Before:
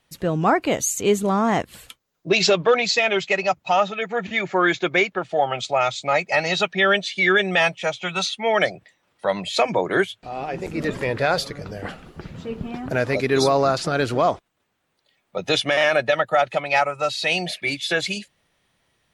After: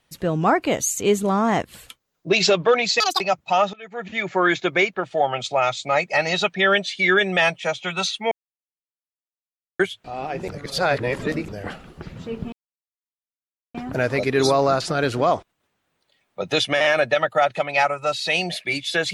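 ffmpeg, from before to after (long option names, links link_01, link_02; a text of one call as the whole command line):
ffmpeg -i in.wav -filter_complex "[0:a]asplit=9[link_01][link_02][link_03][link_04][link_05][link_06][link_07][link_08][link_09];[link_01]atrim=end=3.004[link_10];[link_02]atrim=start=3:end=3.39,asetpts=PTS-STARTPTS,asetrate=84231,aresample=44100[link_11];[link_03]atrim=start=3.386:end=3.92,asetpts=PTS-STARTPTS,afade=type=out:start_time=0.53:duration=0.004:curve=hsin:silence=0.0841395[link_12];[link_04]atrim=start=3.92:end=8.5,asetpts=PTS-STARTPTS,afade=type=in:duration=0.59:silence=0.0841395,afade=type=out:start_time=4.576:duration=0.004:curve=hsin[link_13];[link_05]atrim=start=8.5:end=9.98,asetpts=PTS-STARTPTS,volume=0[link_14];[link_06]atrim=start=9.98:end=10.682,asetpts=PTS-STARTPTS,afade=type=in:duration=0.004:curve=hsin[link_15];[link_07]atrim=start=10.678:end=11.672,asetpts=PTS-STARTPTS,areverse[link_16];[link_08]atrim=start=11.668:end=12.71,asetpts=PTS-STARTPTS,afade=type=out:start_time=1.038:duration=0.004:curve=hsin,apad=pad_dur=1.22[link_17];[link_09]atrim=start=12.71,asetpts=PTS-STARTPTS,afade=type=in:duration=0.004:curve=hsin[link_18];[link_10][link_11]acrossfade=duration=0.004:curve1=hsin:curve2=hsin[link_19];[link_12][link_13][link_14][link_15]concat=n=4:v=0:a=1[link_20];[link_19][link_20]acrossfade=duration=0.004:curve1=hsin:curve2=hsin[link_21];[link_21][link_16]acrossfade=duration=0.004:curve1=hsin:curve2=hsin[link_22];[link_17][link_18]concat=n=2:v=0:a=1[link_23];[link_22][link_23]acrossfade=duration=0.004:curve1=hsin:curve2=hsin" out.wav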